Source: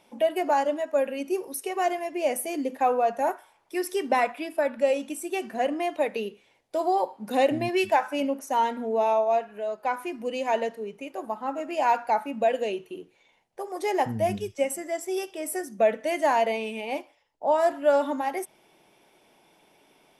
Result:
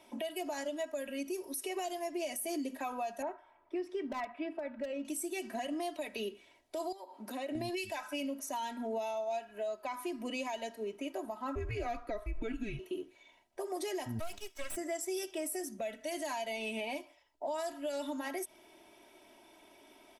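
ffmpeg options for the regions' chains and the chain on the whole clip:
ffmpeg -i in.wav -filter_complex "[0:a]asettb=1/sr,asplit=3[link_01][link_02][link_03];[link_01]atrim=end=3.224[link_04];[link_02]atrim=start=3.22:end=5.05,asetpts=PTS-STARTPTS,afade=type=in:duration=0.004:curve=qsin,afade=type=out:start_time=1.826:duration=0.004:curve=qsin,lowpass=1700,asoftclip=type=hard:threshold=-15.5dB[link_05];[link_03]atrim=start=5.046[link_06];[link_04][link_05]acrossfade=duration=0.004:curve1=hsin:curve2=qsin[link_07];[link_07][link_06]acrossfade=duration=0.004:curve1=qsin:curve2=hsin,asettb=1/sr,asplit=3[link_08][link_09][link_10];[link_08]atrim=end=6.924[link_11];[link_09]atrim=start=6.92:end=7.55,asetpts=PTS-STARTPTS,afade=type=in:duration=0.004:curve=qsin,afade=type=out:start_time=0.626:duration=0.004:curve=qsin,highpass=frequency=260:poles=1,acompressor=threshold=-41dB:ratio=2.5:attack=3.2:release=140:knee=1:detection=peak[link_12];[link_10]atrim=start=7.546[link_13];[link_11][link_12]acrossfade=duration=0.004:curve1=hsin:curve2=qsin[link_14];[link_14][link_13]acrossfade=duration=0.004:curve1=qsin:curve2=hsin,asettb=1/sr,asplit=3[link_15][link_16][link_17];[link_15]atrim=end=11.554[link_18];[link_16]atrim=start=11.55:end=12.79,asetpts=PTS-STARTPTS,afade=type=in:duration=0.004:curve=qsin,afade=type=out:start_time=1.236:duration=0.004:curve=qsin,bass=frequency=250:gain=-1,treble=frequency=4000:gain=-12,afreqshift=-230[link_19];[link_17]atrim=start=12.786[link_20];[link_18][link_19]acrossfade=duration=0.004:curve1=hsin:curve2=qsin[link_21];[link_21][link_20]acrossfade=duration=0.004:curve1=qsin:curve2=hsin,asettb=1/sr,asplit=3[link_22][link_23][link_24];[link_22]atrim=end=14.194[link_25];[link_23]atrim=start=14.19:end=14.76,asetpts=PTS-STARTPTS,afade=type=in:duration=0.004:curve=qsin,afade=type=out:start_time=0.566:duration=0.004:curve=qsin,highpass=720,aeval=exprs='max(val(0),0)':channel_layout=same[link_26];[link_24]atrim=start=14.756[link_27];[link_25][link_26]acrossfade=duration=0.004:curve1=hsin:curve2=qsin[link_28];[link_28][link_27]acrossfade=duration=0.004:curve1=qsin:curve2=hsin,aecho=1:1:3.1:0.77,acrossover=split=130|3000[link_29][link_30][link_31];[link_30]acompressor=threshold=-33dB:ratio=6[link_32];[link_29][link_32][link_31]amix=inputs=3:normalize=0,alimiter=level_in=3.5dB:limit=-24dB:level=0:latency=1:release=68,volume=-3.5dB,volume=-1.5dB" out.wav

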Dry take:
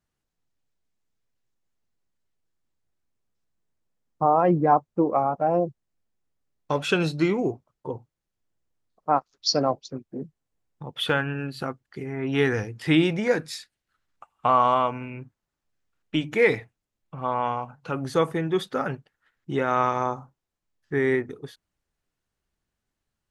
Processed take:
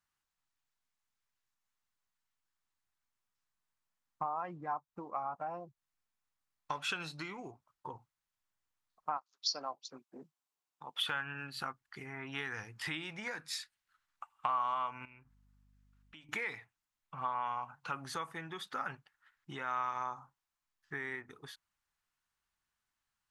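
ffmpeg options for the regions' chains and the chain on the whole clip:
ffmpeg -i in.wav -filter_complex "[0:a]asettb=1/sr,asplit=3[link_01][link_02][link_03];[link_01]atrim=end=9.174[link_04];[link_02]atrim=start=9.17:end=11.02,asetpts=PTS-STARTPTS,afade=type=in:duration=0.004:curve=qsin,afade=type=out:start_time=1.846:duration=0.004:curve=qsin,highpass=280,equalizer=frequency=1800:width_type=o:width=0.86:gain=-6[link_05];[link_03]atrim=start=11.016[link_06];[link_04][link_05]acrossfade=duration=0.004:curve1=hsin:curve2=qsin[link_07];[link_07][link_06]acrossfade=duration=0.004:curve1=qsin:curve2=hsin,asettb=1/sr,asplit=3[link_08][link_09][link_10];[link_08]atrim=end=15.054[link_11];[link_09]atrim=start=15.05:end=16.29,asetpts=PTS-STARTPTS,afade=type=in:duration=0.004:curve=qsin,afade=type=out:start_time=1.236:duration=0.004:curve=qsin,aeval=exprs='val(0)+0.002*(sin(2*PI*50*n/s)+sin(2*PI*2*50*n/s)/2+sin(2*PI*3*50*n/s)/3+sin(2*PI*4*50*n/s)/4+sin(2*PI*5*50*n/s)/5)':channel_layout=same,acompressor=threshold=-48dB:ratio=4:attack=3.2:release=140:knee=1:detection=peak[link_12];[link_10]atrim=start=16.286[link_13];[link_11][link_12]acrossfade=duration=0.004:curve1=hsin:curve2=qsin[link_14];[link_14][link_13]acrossfade=duration=0.004:curve1=qsin:curve2=hsin,acompressor=threshold=-30dB:ratio=5,lowshelf=frequency=710:width_type=q:width=1.5:gain=-11,volume=-2dB" out.wav

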